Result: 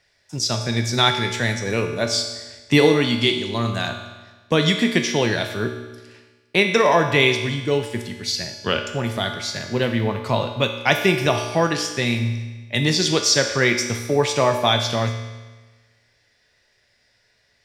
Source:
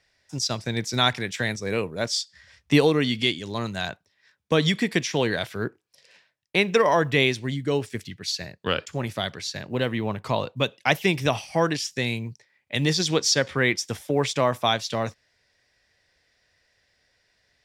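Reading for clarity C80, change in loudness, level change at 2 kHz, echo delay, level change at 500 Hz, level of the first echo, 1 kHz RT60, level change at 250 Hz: 8.0 dB, +4.5 dB, +4.5 dB, none, +4.0 dB, none, 1.3 s, +4.0 dB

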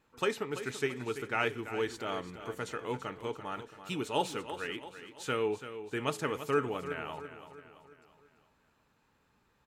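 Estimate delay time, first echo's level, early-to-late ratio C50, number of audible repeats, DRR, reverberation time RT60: 0.336 s, -11.5 dB, none, 4, none, none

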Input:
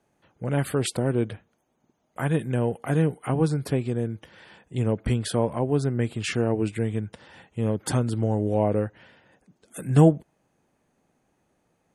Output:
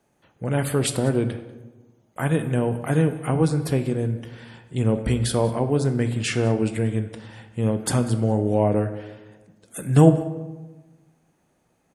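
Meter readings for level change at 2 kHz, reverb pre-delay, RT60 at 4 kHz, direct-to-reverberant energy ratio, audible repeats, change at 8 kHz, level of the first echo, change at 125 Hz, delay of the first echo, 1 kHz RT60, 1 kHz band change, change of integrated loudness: +3.0 dB, 16 ms, 0.70 s, 8.5 dB, 1, +5.0 dB, -21.0 dB, +3.0 dB, 0.191 s, 1.1 s, +2.5 dB, +2.5 dB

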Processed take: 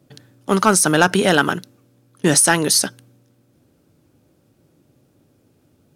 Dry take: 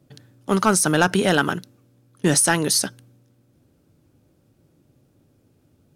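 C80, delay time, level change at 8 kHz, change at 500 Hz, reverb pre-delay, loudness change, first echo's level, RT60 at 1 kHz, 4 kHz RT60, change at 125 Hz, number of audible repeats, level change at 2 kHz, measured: none, none, +4.0 dB, +3.5 dB, none, +3.5 dB, none, none, none, +1.5 dB, none, +4.0 dB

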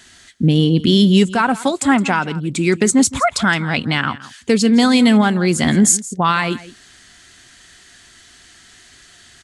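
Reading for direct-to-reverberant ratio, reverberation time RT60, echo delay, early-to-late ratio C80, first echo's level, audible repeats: none, none, 0.167 s, none, -17.5 dB, 1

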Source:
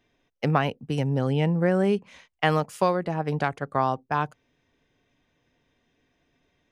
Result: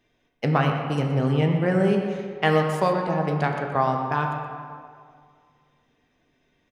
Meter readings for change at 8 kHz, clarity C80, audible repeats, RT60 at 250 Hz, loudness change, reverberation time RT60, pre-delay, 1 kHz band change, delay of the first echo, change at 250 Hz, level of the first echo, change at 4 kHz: n/a, 4.5 dB, 1, 2.1 s, +2.0 dB, 2.1 s, 4 ms, +2.5 dB, 0.122 s, +2.5 dB, -11.5 dB, +1.5 dB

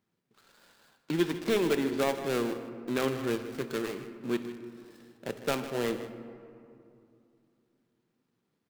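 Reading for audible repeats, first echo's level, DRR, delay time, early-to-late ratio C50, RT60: 1, -14.0 dB, 8.0 dB, 0.155 s, 9.0 dB, 2.6 s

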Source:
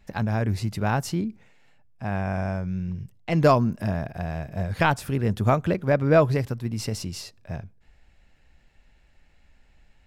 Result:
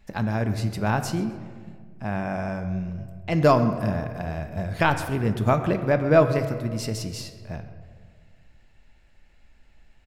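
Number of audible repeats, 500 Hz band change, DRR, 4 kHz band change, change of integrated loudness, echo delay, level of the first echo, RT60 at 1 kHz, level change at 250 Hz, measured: 1, +1.0 dB, 7.5 dB, +0.5 dB, +0.5 dB, 0.131 s, -19.0 dB, 1.6 s, +0.5 dB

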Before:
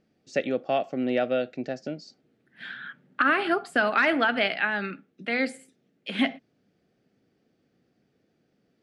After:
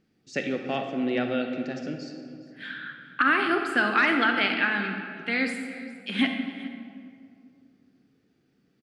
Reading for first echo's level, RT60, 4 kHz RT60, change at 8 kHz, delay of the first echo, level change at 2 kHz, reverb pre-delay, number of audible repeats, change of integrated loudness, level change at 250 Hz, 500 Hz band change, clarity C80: -19.5 dB, 2.3 s, 1.3 s, n/a, 0.41 s, +1.5 dB, 28 ms, 1, 0.0 dB, +2.0 dB, -3.5 dB, 6.5 dB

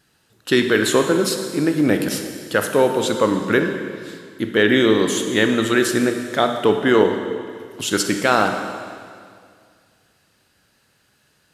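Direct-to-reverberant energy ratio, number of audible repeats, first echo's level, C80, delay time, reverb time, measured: 5.0 dB, none, none, 7.5 dB, none, 2.1 s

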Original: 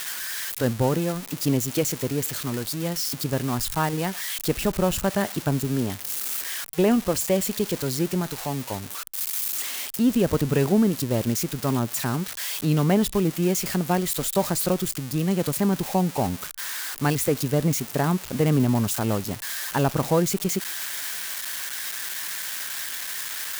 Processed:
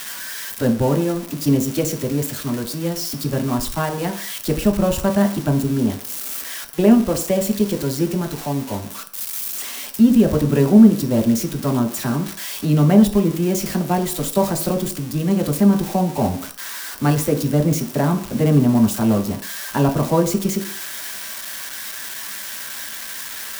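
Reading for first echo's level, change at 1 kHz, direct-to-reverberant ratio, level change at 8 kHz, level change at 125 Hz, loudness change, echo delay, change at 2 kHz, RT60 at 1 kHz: none, +3.0 dB, 2.0 dB, +0.5 dB, +5.0 dB, +5.0 dB, none, +1.0 dB, 0.55 s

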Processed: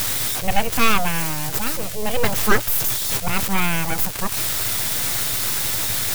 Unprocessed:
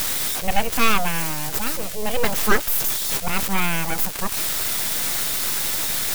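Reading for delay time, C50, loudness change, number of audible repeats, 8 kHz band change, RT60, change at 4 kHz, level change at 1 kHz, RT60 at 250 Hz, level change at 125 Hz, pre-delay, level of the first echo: none, none, +1.0 dB, none, +1.0 dB, none, +1.0 dB, +1.0 dB, none, +4.0 dB, none, none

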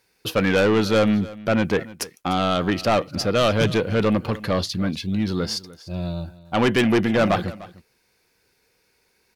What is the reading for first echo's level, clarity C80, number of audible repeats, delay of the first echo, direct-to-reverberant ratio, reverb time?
-19.0 dB, none, 1, 0.299 s, none, none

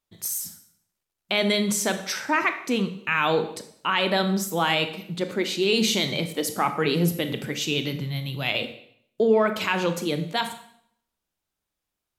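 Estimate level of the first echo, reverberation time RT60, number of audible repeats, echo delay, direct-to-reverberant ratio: none, 0.65 s, none, none, 8.5 dB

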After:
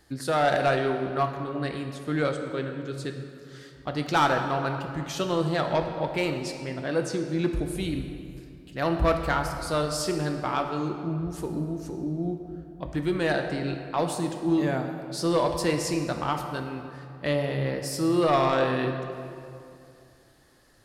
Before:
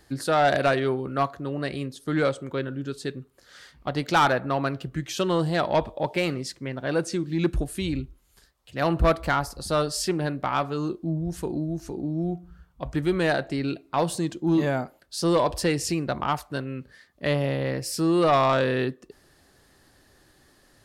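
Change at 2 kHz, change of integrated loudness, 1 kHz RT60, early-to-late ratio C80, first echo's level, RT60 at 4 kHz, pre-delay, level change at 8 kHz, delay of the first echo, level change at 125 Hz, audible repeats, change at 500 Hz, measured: -1.5 dB, -1.5 dB, 2.5 s, 7.0 dB, none, 1.6 s, 4 ms, -2.5 dB, none, -1.5 dB, none, -1.5 dB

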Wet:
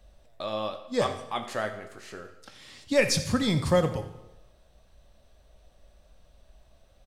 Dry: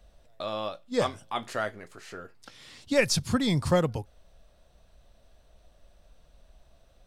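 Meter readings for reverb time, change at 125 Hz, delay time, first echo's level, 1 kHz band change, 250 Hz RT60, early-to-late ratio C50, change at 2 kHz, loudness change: 1.0 s, 0.0 dB, 83 ms, -16.0 dB, +0.5 dB, 0.90 s, 10.0 dB, +0.5 dB, +1.0 dB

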